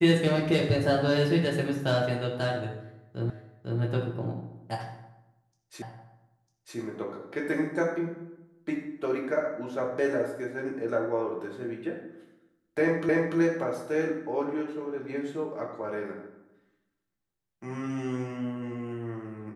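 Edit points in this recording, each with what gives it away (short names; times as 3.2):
3.3 repeat of the last 0.5 s
5.82 repeat of the last 0.95 s
13.09 repeat of the last 0.29 s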